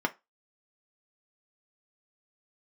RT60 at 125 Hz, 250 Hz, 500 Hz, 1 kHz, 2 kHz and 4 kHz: 0.15 s, 0.20 s, 0.20 s, 0.25 s, 0.20 s, 0.20 s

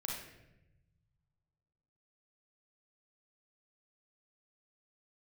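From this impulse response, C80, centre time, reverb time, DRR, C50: 5.0 dB, 57 ms, 0.95 s, -3.0 dB, 0.5 dB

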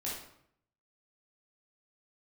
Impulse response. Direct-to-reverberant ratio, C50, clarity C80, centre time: -6.5 dB, 1.5 dB, 6.5 dB, 50 ms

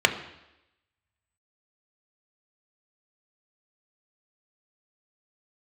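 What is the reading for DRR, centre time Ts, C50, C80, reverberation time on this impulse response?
5.5 dB, 13 ms, 11.5 dB, 14.0 dB, 0.90 s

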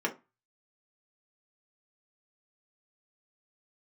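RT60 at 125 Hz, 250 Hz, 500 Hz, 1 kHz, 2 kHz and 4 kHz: 0.35 s, 0.30 s, 0.20 s, 0.25 s, 0.25 s, 0.15 s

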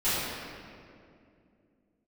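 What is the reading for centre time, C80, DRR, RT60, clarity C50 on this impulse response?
157 ms, -2.0 dB, -16.0 dB, 2.4 s, -4.0 dB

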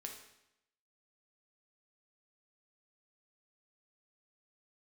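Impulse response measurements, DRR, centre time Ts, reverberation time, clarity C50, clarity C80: 1.5 dB, 29 ms, 0.85 s, 5.5 dB, 8.5 dB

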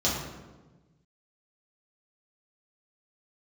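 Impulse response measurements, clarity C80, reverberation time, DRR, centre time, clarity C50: 4.5 dB, 1.2 s, -7.0 dB, 64 ms, 2.0 dB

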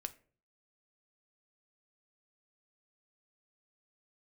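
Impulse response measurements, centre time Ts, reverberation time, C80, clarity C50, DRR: 4 ms, 0.45 s, 22.5 dB, 18.0 dB, 9.5 dB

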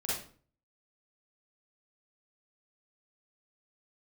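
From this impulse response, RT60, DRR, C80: 0.45 s, -8.5 dB, 6.5 dB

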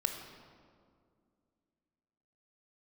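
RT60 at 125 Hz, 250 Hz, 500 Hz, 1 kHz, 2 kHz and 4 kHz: 2.6 s, 3.0 s, 2.4 s, 2.0 s, 1.4 s, 1.2 s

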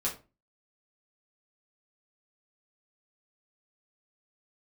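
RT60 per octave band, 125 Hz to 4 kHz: 0.45 s, 0.40 s, 0.35 s, 0.30 s, 0.25 s, 0.20 s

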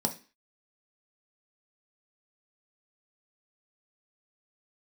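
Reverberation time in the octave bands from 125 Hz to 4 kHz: 0.30 s, 0.40 s, 0.35 s, 0.35 s, 0.40 s, 0.35 s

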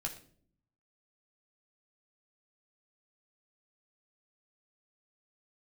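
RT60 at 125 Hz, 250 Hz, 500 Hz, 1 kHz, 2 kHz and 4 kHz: 1.0 s, 0.95 s, 0.65 s, 0.45 s, 0.40 s, 0.40 s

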